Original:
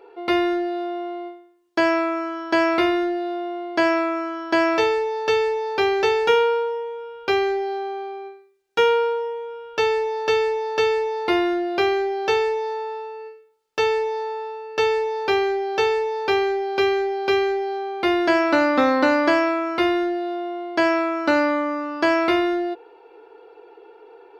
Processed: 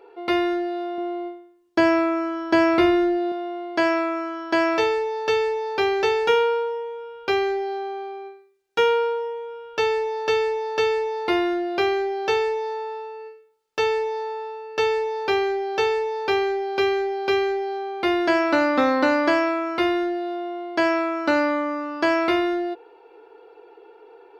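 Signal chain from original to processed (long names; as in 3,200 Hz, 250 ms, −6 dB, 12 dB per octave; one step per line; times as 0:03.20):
0:00.98–0:03.32: low-shelf EQ 310 Hz +10 dB
level −1.5 dB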